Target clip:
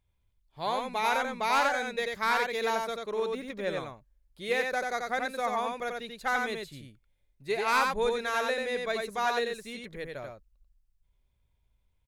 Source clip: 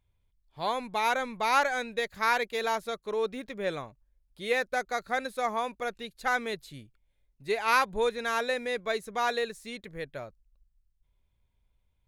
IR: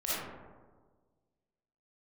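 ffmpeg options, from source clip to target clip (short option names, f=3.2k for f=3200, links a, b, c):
-filter_complex "[0:a]asoftclip=type=hard:threshold=-17.5dB,asplit=2[a][b];[b]aecho=0:1:89:0.668[c];[a][c]amix=inputs=2:normalize=0,volume=-1.5dB"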